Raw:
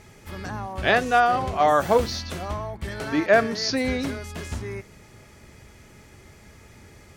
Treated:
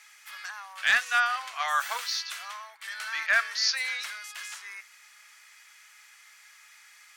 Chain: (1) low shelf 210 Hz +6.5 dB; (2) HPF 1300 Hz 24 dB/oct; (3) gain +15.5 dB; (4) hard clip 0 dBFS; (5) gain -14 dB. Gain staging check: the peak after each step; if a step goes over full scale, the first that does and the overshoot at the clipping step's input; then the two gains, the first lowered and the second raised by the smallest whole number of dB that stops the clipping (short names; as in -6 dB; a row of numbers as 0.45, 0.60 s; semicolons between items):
-5.0, -10.0, +5.5, 0.0, -14.0 dBFS; step 3, 5.5 dB; step 3 +9.5 dB, step 5 -8 dB